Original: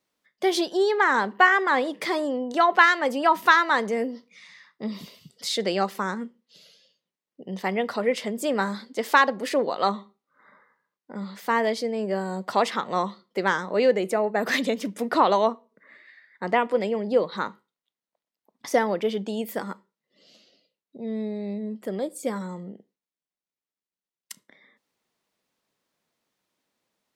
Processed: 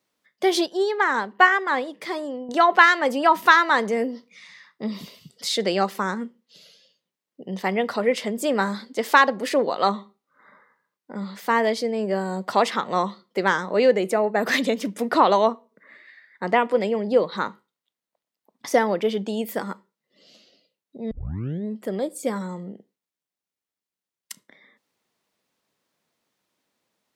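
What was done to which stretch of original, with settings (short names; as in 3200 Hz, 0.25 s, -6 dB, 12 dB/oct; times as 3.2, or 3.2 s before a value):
0.66–2.49 upward expander, over -30 dBFS
21.11 tape start 0.54 s
whole clip: HPF 46 Hz; gain +2.5 dB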